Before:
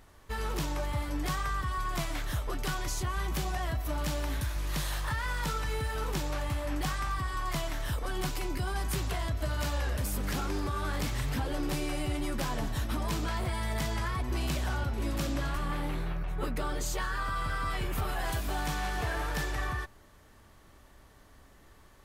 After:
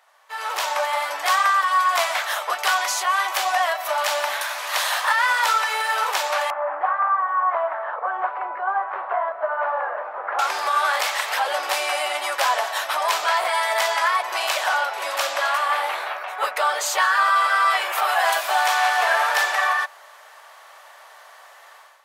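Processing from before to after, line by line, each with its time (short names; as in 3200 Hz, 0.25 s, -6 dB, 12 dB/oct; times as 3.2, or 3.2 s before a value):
6.5–10.39 LPF 1400 Hz 24 dB/oct
whole clip: steep high-pass 620 Hz 36 dB/oct; high shelf 4200 Hz -7.5 dB; AGC gain up to 13.5 dB; gain +4.5 dB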